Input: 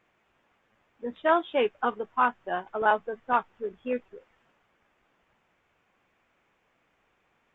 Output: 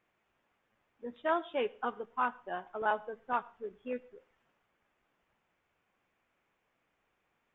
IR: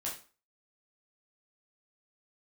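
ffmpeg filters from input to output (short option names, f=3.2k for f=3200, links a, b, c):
-filter_complex "[0:a]asplit=2[a][b];[1:a]atrim=start_sample=2205,adelay=75[c];[b][c]afir=irnorm=-1:irlink=0,volume=-23dB[d];[a][d]amix=inputs=2:normalize=0,volume=-8dB"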